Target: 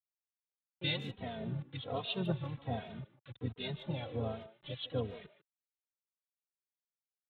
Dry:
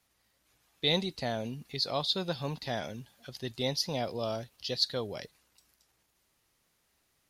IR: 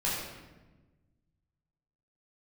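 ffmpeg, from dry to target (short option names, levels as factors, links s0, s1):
-filter_complex "[0:a]agate=range=0.0224:threshold=0.001:ratio=3:detection=peak,afftdn=nr=28:nf=-42,bandreject=f=1700:w=8.1,asplit=3[s0][s1][s2];[s1]asetrate=33038,aresample=44100,atempo=1.33484,volume=0.398[s3];[s2]asetrate=52444,aresample=44100,atempo=0.840896,volume=0.355[s4];[s0][s3][s4]amix=inputs=3:normalize=0,aresample=8000,acrusher=bits=7:mix=0:aa=0.000001,aresample=44100,acrossover=split=1300[s5][s6];[s5]aeval=exprs='val(0)*(1-0.7/2+0.7/2*cos(2*PI*2.6*n/s))':c=same[s7];[s6]aeval=exprs='val(0)*(1-0.7/2-0.7/2*cos(2*PI*2.6*n/s))':c=same[s8];[s7][s8]amix=inputs=2:normalize=0,equalizer=f=120:w=0.97:g=8.5,asplit=2[s9][s10];[s10]adelay=150,highpass=300,lowpass=3400,asoftclip=type=hard:threshold=0.0473,volume=0.224[s11];[s9][s11]amix=inputs=2:normalize=0,asplit=2[s12][s13];[s13]adelay=2.9,afreqshift=-1.3[s14];[s12][s14]amix=inputs=2:normalize=1,volume=0.841"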